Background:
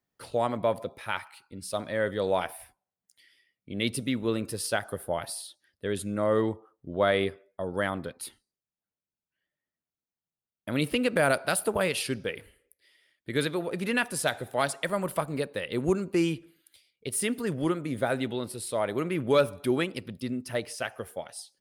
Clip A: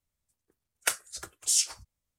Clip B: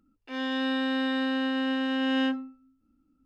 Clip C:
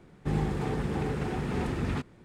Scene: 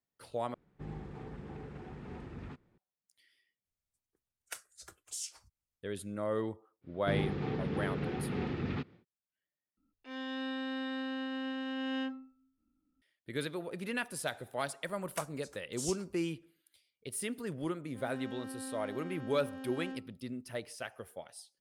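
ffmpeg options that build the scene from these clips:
-filter_complex "[3:a]asplit=2[s0][s1];[1:a]asplit=2[s2][s3];[2:a]asplit=2[s4][s5];[0:a]volume=0.355[s6];[s0]aemphasis=mode=reproduction:type=50fm[s7];[s2]acompressor=threshold=0.0355:ratio=2:attack=2.9:release=429:knee=1:detection=rms[s8];[s1]highpass=100,equalizer=f=630:t=q:w=4:g=-4,equalizer=f=970:t=q:w=4:g=-6,equalizer=f=1600:t=q:w=4:g=-3,lowpass=f=4500:w=0.5412,lowpass=f=4500:w=1.3066[s9];[s5]adynamicsmooth=sensitivity=2:basefreq=820[s10];[s6]asplit=4[s11][s12][s13][s14];[s11]atrim=end=0.544[s15];[s7]atrim=end=2.24,asetpts=PTS-STARTPTS,volume=0.168[s16];[s12]atrim=start=2.776:end=3.654[s17];[s8]atrim=end=2.18,asetpts=PTS-STARTPTS,volume=0.316[s18];[s13]atrim=start=5.826:end=9.774[s19];[s4]atrim=end=3.25,asetpts=PTS-STARTPTS,volume=0.316[s20];[s14]atrim=start=13.016[s21];[s9]atrim=end=2.24,asetpts=PTS-STARTPTS,volume=0.668,afade=t=in:d=0.1,afade=t=out:st=2.14:d=0.1,adelay=6810[s22];[s3]atrim=end=2.18,asetpts=PTS-STARTPTS,volume=0.168,afade=t=in:d=0.004:c=hsin,afade=t=out:st=2.176:d=0.004:c=hsin,adelay=14300[s23];[s10]atrim=end=3.25,asetpts=PTS-STARTPTS,volume=0.158,afade=t=in:d=0.004:c=hsin,afade=t=out:st=3.246:d=0.004:c=hsin,adelay=17650[s24];[s15][s16]acrossfade=d=0.004:c1=hsin:c2=hsin[s25];[s25][s17]acrossfade=d=0.004:c1=hsin:c2=hsin[s26];[s26][s18]acrossfade=d=0.004:c1=hsin:c2=hsin[s27];[s27][s19]acrossfade=d=0.004:c1=hsin:c2=hsin[s28];[s28][s20]acrossfade=d=0.004:c1=hsin:c2=hsin[s29];[s29][s21]acrossfade=d=0.004:c1=hsin:c2=hsin[s30];[s30][s22][s23][s24]amix=inputs=4:normalize=0"

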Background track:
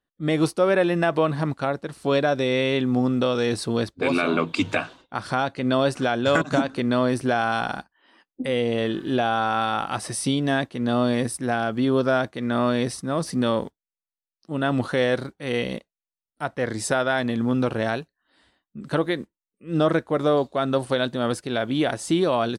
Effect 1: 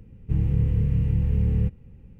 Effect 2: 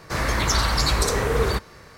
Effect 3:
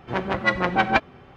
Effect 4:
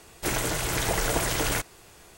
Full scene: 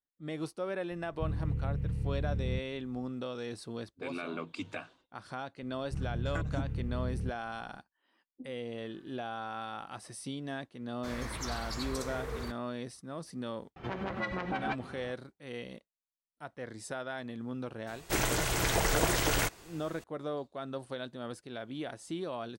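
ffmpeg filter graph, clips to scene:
-filter_complex "[1:a]asplit=2[s0][s1];[0:a]volume=0.15[s2];[2:a]agate=range=0.0224:threshold=0.0158:ratio=3:release=100:detection=peak[s3];[3:a]acompressor=threshold=0.0316:ratio=6:attack=3.2:release=140:knee=1:detection=peak[s4];[4:a]equalizer=f=11000:t=o:w=0.67:g=-5[s5];[s0]atrim=end=2.19,asetpts=PTS-STARTPTS,volume=0.266,afade=t=in:d=0.004:c=hsin,afade=t=out:st=2.186:d=0.004:c=hsin,adelay=910[s6];[s1]atrim=end=2.19,asetpts=PTS-STARTPTS,volume=0.211,afade=t=in:d=0.004:c=hsin,afade=t=out:st=2.186:d=0.004:c=hsin,adelay=5620[s7];[s3]atrim=end=1.97,asetpts=PTS-STARTPTS,volume=0.133,afade=t=in:d=0.004:c=hsin,afade=t=out:st=1.966:d=0.004:c=hsin,adelay=10930[s8];[s4]atrim=end=1.36,asetpts=PTS-STARTPTS,volume=0.841,afade=t=in:d=0.004:c=hsin,afade=t=out:st=1.356:d=0.004:c=hsin,adelay=13760[s9];[s5]atrim=end=2.17,asetpts=PTS-STARTPTS,volume=0.794,afade=t=in:d=0.004:c=hsin,afade=t=out:st=2.166:d=0.004:c=hsin,adelay=17870[s10];[s2][s6][s7][s8][s9][s10]amix=inputs=6:normalize=0"

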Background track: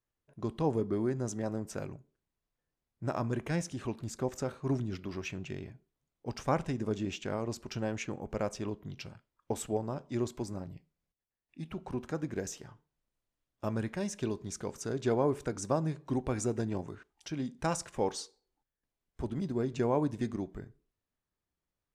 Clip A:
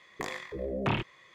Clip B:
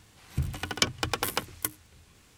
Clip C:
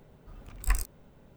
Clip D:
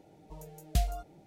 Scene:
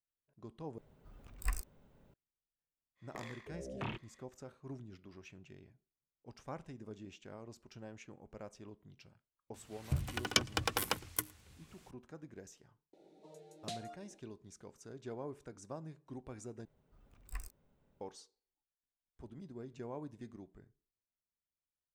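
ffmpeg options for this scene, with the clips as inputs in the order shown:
-filter_complex "[3:a]asplit=2[s0][s1];[0:a]volume=0.168[s2];[2:a]asplit=2[s3][s4];[s4]adelay=110.8,volume=0.0447,highshelf=f=4000:g=-2.49[s5];[s3][s5]amix=inputs=2:normalize=0[s6];[4:a]highpass=f=180:w=0.5412,highpass=f=180:w=1.3066,equalizer=f=370:t=q:w=4:g=9,equalizer=f=550:t=q:w=4:g=7,equalizer=f=990:t=q:w=4:g=-3,equalizer=f=3900:t=q:w=4:g=9,lowpass=f=9800:w=0.5412,lowpass=f=9800:w=1.3066[s7];[s2]asplit=3[s8][s9][s10];[s8]atrim=end=0.784[s11];[s0]atrim=end=1.36,asetpts=PTS-STARTPTS,volume=0.355[s12];[s9]atrim=start=2.136:end=16.654[s13];[s1]atrim=end=1.36,asetpts=PTS-STARTPTS,volume=0.141[s14];[s10]atrim=start=18.006[s15];[1:a]atrim=end=1.34,asetpts=PTS-STARTPTS,volume=0.251,afade=t=in:d=0.1,afade=t=out:st=1.24:d=0.1,adelay=2950[s16];[s6]atrim=end=2.37,asetpts=PTS-STARTPTS,volume=0.562,afade=t=in:d=0.004:c=hsin,afade=t=out:st=2.366:d=0.004:c=hsin,adelay=420714S[s17];[s7]atrim=end=1.26,asetpts=PTS-STARTPTS,volume=0.376,afade=t=in:d=0.004:c=hsin,afade=t=out:st=1.256:d=0.004:c=hsin,adelay=12930[s18];[s11][s12]acrossfade=d=0.004:c1=hsin:c2=hsin[s19];[s19][s13]acrossfade=d=0.004:c1=hsin:c2=hsin[s20];[s20][s14]acrossfade=d=0.004:c1=hsin:c2=hsin[s21];[s21][s15]acrossfade=d=0.004:c1=hsin:c2=hsin[s22];[s22][s16][s17][s18]amix=inputs=4:normalize=0"

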